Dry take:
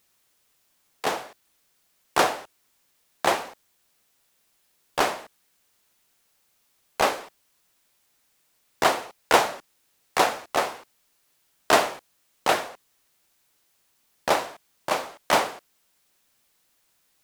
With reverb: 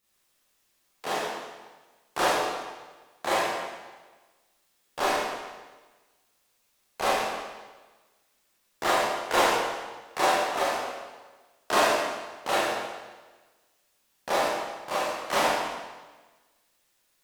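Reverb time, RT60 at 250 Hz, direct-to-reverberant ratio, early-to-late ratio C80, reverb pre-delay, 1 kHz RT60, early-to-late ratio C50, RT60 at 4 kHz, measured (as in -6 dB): 1.3 s, 1.3 s, -9.5 dB, -0.5 dB, 24 ms, 1.3 s, -2.5 dB, 1.2 s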